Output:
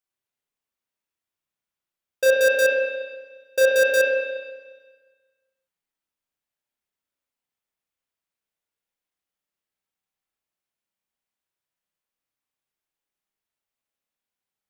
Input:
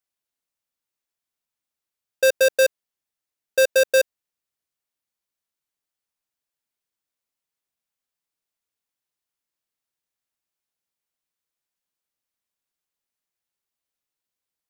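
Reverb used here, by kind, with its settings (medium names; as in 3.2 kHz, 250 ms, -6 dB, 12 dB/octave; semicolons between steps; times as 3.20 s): spring tank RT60 1.4 s, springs 32/59 ms, chirp 75 ms, DRR -3 dB; trim -4 dB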